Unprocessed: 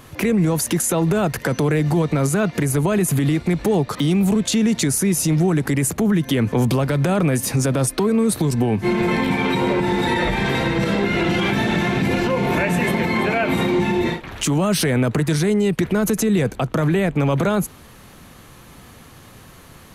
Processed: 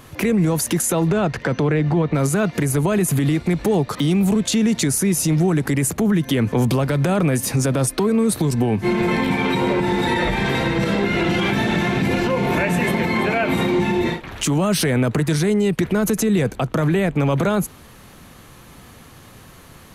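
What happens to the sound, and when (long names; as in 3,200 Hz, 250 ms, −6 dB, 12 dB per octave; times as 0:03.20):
0:01.07–0:02.13: low-pass filter 5,900 Hz → 2,700 Hz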